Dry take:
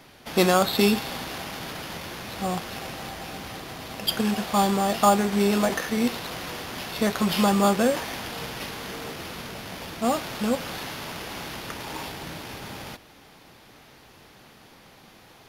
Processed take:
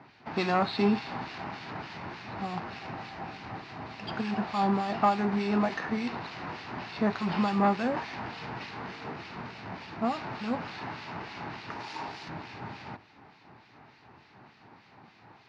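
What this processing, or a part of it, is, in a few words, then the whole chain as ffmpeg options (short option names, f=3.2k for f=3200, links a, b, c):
guitar amplifier with harmonic tremolo: -filter_complex "[0:a]acrossover=split=1900[a][b];[a]aeval=exprs='val(0)*(1-0.7/2+0.7/2*cos(2*PI*3.4*n/s))':c=same[c];[b]aeval=exprs='val(0)*(1-0.7/2-0.7/2*cos(2*PI*3.4*n/s))':c=same[d];[c][d]amix=inputs=2:normalize=0,asoftclip=type=tanh:threshold=-16.5dB,highpass=95,equalizer=f=110:t=q:w=4:g=5,equalizer=f=520:t=q:w=4:g=-8,equalizer=f=890:t=q:w=4:g=5,equalizer=f=3.3k:t=q:w=4:g=-10,lowpass=f=4.1k:w=0.5412,lowpass=f=4.1k:w=1.3066,asettb=1/sr,asplit=3[e][f][g];[e]atrim=end=11.714[h];[f]atrim=start=11.71:end=12.29,asetpts=PTS-STARTPTS,afade=t=in:d=0.004:c=qsin,afade=t=out:st=0.576:d=0.004:c=qsin,bass=f=250:g=-6,treble=f=4k:g=9[i];[g]atrim=start=12.286[j];[h][i]acrossfade=d=0.004:c1=hsin:c2=qsin[k];[k][j]acrossfade=d=0.004:c1=qsin:c2=hsin"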